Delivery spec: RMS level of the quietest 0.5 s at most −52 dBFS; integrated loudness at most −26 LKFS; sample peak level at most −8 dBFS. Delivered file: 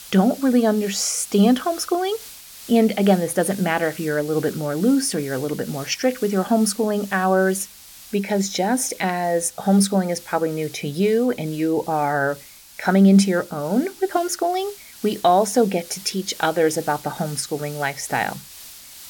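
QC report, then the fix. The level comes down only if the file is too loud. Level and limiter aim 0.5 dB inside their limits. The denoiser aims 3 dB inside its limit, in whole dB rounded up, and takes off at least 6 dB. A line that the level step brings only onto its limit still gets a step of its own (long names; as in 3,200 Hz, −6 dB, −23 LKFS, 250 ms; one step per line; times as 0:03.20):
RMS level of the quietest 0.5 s −41 dBFS: out of spec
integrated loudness −21.0 LKFS: out of spec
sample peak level −5.0 dBFS: out of spec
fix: broadband denoise 9 dB, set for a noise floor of −41 dBFS
level −5.5 dB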